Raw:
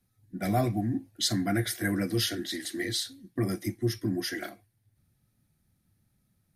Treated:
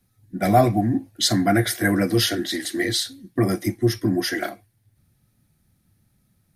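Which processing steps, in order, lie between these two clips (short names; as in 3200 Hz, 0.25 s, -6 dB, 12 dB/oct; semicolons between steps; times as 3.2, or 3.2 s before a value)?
dynamic EQ 770 Hz, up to +6 dB, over -44 dBFS, Q 0.73; gain +7 dB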